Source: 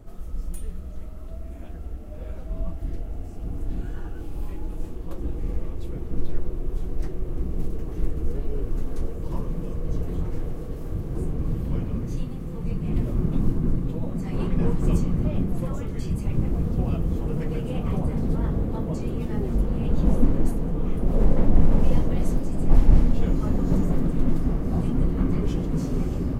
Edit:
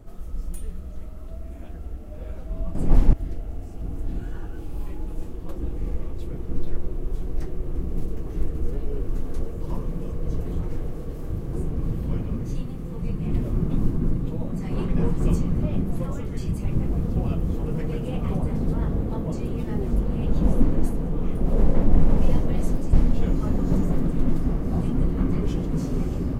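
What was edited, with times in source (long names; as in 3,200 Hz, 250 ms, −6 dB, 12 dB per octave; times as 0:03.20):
0:22.55–0:22.93: move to 0:02.75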